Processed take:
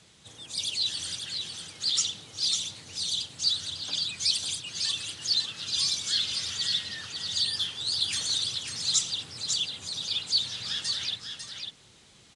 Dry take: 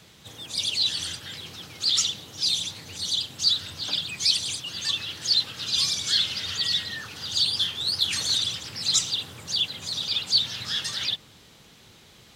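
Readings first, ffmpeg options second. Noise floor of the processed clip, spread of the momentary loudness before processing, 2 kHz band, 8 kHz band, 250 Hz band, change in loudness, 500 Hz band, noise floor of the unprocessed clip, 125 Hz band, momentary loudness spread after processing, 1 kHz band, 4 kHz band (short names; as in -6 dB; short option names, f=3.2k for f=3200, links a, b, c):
-57 dBFS, 9 LU, -5.0 dB, -1.0 dB, -5.5 dB, -3.5 dB, -5.5 dB, -53 dBFS, -5.5 dB, 8 LU, -5.5 dB, -3.5 dB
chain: -filter_complex "[0:a]highshelf=f=8.2k:g=11.5,asplit=2[a][b];[b]aecho=0:1:548:0.501[c];[a][c]amix=inputs=2:normalize=0,aresample=22050,aresample=44100,volume=-6.5dB"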